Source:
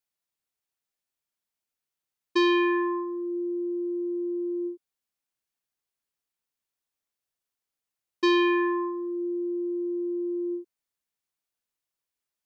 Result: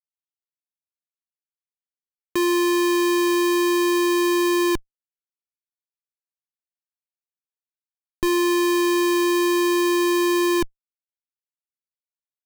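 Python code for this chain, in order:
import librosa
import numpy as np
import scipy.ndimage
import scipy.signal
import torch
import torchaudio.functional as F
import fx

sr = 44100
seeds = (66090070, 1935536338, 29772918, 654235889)

p1 = fx.rider(x, sr, range_db=10, speed_s=2.0)
p2 = x + (p1 * librosa.db_to_amplitude(3.0))
p3 = fx.schmitt(p2, sr, flips_db=-31.5)
y = p3 * librosa.db_to_amplitude(3.5)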